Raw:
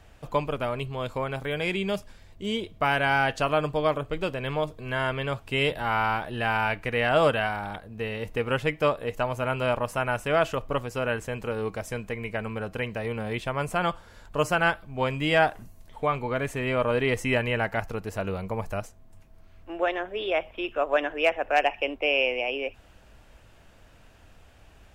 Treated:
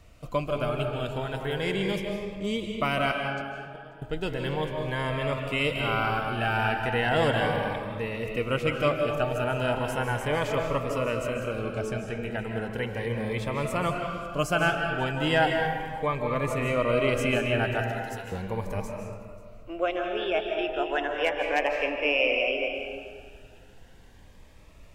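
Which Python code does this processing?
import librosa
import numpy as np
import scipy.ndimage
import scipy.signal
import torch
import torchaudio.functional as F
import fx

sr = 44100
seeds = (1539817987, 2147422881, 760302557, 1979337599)

y = fx.gate_flip(x, sr, shuts_db=-18.0, range_db=-26, at=(3.11, 4.02))
y = fx.peak_eq(y, sr, hz=13000.0, db=-12.0, octaves=0.86, at=(11.59, 12.15))
y = fx.highpass(y, sr, hz=1400.0, slope=12, at=(17.82, 18.32))
y = fx.echo_feedback(y, sr, ms=538, feedback_pct=25, wet_db=-22)
y = fx.rev_freeverb(y, sr, rt60_s=1.8, hf_ratio=0.55, predelay_ms=115, drr_db=2.5)
y = fx.notch_cascade(y, sr, direction='rising', hz=0.36)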